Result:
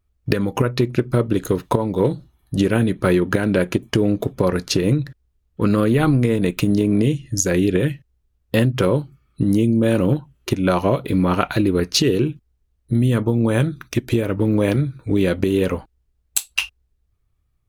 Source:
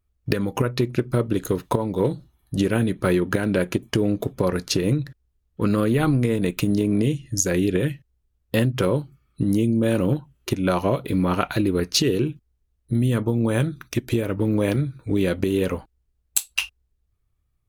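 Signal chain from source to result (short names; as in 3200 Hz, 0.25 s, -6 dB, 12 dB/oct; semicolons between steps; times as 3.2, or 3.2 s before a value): high shelf 6600 Hz -4 dB; gain +3.5 dB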